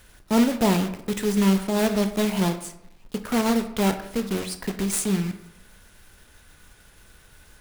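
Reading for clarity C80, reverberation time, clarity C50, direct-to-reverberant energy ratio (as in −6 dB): 14.0 dB, 0.80 s, 11.5 dB, 8.0 dB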